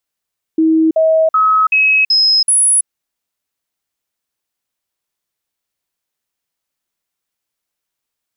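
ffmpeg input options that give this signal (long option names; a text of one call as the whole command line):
ffmpeg -f lavfi -i "aevalsrc='0.398*clip(min(mod(t,0.38),0.33-mod(t,0.38))/0.005,0,1)*sin(2*PI*320*pow(2,floor(t/0.38)/1)*mod(t,0.38))':duration=2.28:sample_rate=44100" out.wav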